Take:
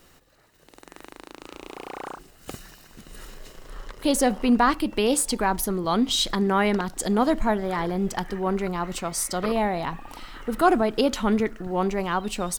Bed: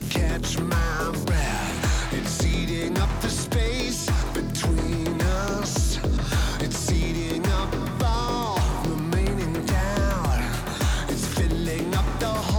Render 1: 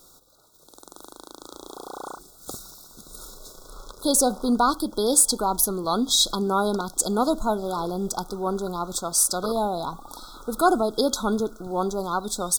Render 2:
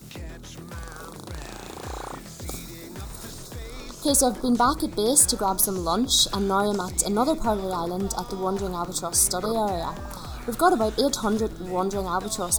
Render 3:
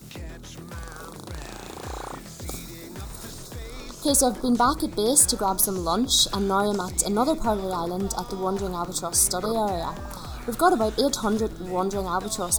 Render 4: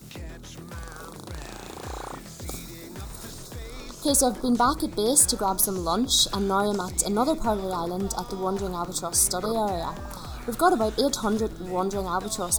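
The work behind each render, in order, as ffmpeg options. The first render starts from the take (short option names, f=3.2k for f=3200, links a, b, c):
-af "afftfilt=real='re*(1-between(b*sr/4096,1500,3300))':imag='im*(1-between(b*sr/4096,1500,3300))':win_size=4096:overlap=0.75,bass=f=250:g=-5,treble=f=4k:g=8"
-filter_complex "[1:a]volume=-14.5dB[a];[0:a][a]amix=inputs=2:normalize=0"
-af anull
-af "volume=-1dB"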